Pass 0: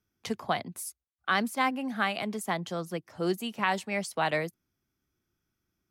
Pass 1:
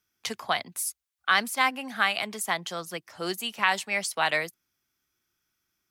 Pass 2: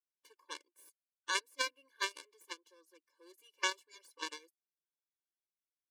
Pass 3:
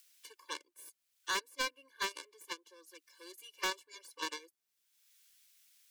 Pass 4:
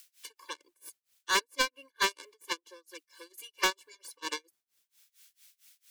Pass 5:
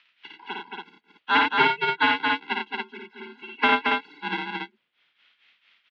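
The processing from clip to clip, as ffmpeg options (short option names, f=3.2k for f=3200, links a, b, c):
-af "tiltshelf=f=680:g=-8"
-af "aeval=exprs='0.422*(cos(1*acos(clip(val(0)/0.422,-1,1)))-cos(1*PI/2))+0.0299*(cos(2*acos(clip(val(0)/0.422,-1,1)))-cos(2*PI/2))+0.15*(cos(3*acos(clip(val(0)/0.422,-1,1)))-cos(3*PI/2))+0.0075*(cos(4*acos(clip(val(0)/0.422,-1,1)))-cos(4*PI/2))+0.00473*(cos(6*acos(clip(val(0)/0.422,-1,1)))-cos(6*PI/2))':c=same,afftfilt=real='re*eq(mod(floor(b*sr/1024/300),2),1)':imag='im*eq(mod(floor(b*sr/1024/300),2),1)':win_size=1024:overlap=0.75,volume=-1.5dB"
-filter_complex "[0:a]acrossover=split=450|1800[a][b][c];[c]acompressor=mode=upward:threshold=-51dB:ratio=2.5[d];[a][b][d]amix=inputs=3:normalize=0,asoftclip=type=tanh:threshold=-33dB,volume=5dB"
-af "tremolo=f=4.4:d=0.97,volume=9dB"
-af "aecho=1:1:55.39|87.46|224.5|279.9:0.708|0.562|0.631|0.631,highpass=f=260:t=q:w=0.5412,highpass=f=260:t=q:w=1.307,lowpass=f=3.4k:t=q:w=0.5176,lowpass=f=3.4k:t=q:w=0.7071,lowpass=f=3.4k:t=q:w=1.932,afreqshift=-120,volume=7dB"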